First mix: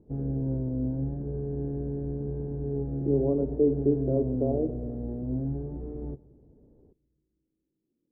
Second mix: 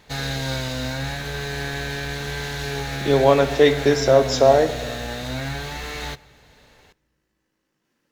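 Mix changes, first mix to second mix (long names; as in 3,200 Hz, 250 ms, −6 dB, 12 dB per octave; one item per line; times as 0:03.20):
background −6.5 dB
master: remove transistor ladder low-pass 410 Hz, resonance 45%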